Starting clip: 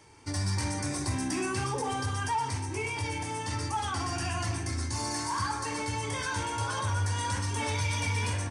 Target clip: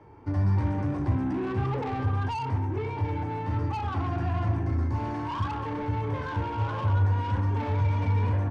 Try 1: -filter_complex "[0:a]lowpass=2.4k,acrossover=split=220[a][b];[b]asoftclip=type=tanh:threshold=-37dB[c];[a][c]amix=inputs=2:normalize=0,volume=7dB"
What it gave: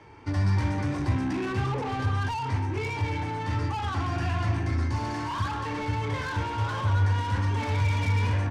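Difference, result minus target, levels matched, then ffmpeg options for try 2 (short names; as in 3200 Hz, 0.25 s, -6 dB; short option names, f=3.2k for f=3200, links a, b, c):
2000 Hz band +6.0 dB
-filter_complex "[0:a]lowpass=1k,acrossover=split=220[a][b];[b]asoftclip=type=tanh:threshold=-37dB[c];[a][c]amix=inputs=2:normalize=0,volume=7dB"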